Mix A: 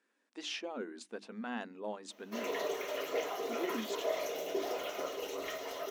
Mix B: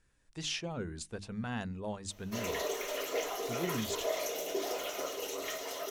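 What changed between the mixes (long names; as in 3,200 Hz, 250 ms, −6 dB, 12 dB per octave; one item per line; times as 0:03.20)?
speech: remove linear-phase brick-wall high-pass 210 Hz
master: add parametric band 9,400 Hz +10.5 dB 1.8 octaves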